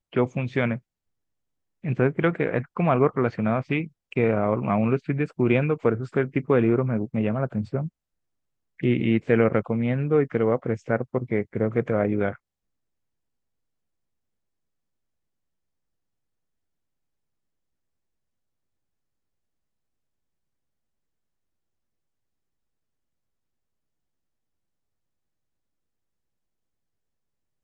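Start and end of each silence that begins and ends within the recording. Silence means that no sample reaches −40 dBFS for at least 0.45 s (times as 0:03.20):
0:00.79–0:01.84
0:07.88–0:08.80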